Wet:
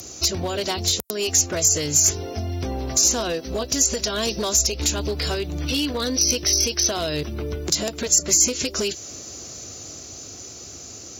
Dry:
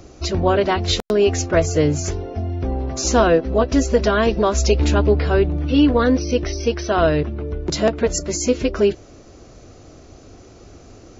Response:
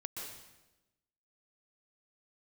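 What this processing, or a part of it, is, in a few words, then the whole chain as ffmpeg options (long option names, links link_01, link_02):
FM broadcast chain: -filter_complex "[0:a]highpass=frequency=65:width=0.5412,highpass=frequency=65:width=1.3066,dynaudnorm=framelen=460:gausssize=9:maxgain=4dB,acrossover=split=970|3500[link_01][link_02][link_03];[link_01]acompressor=threshold=-22dB:ratio=4[link_04];[link_02]acompressor=threshold=-38dB:ratio=4[link_05];[link_03]acompressor=threshold=-33dB:ratio=4[link_06];[link_04][link_05][link_06]amix=inputs=3:normalize=0,aemphasis=mode=production:type=75fm,alimiter=limit=-15dB:level=0:latency=1:release=164,asoftclip=type=hard:threshold=-18.5dB,lowpass=frequency=15000:width=0.5412,lowpass=frequency=15000:width=1.3066,aemphasis=mode=production:type=75fm"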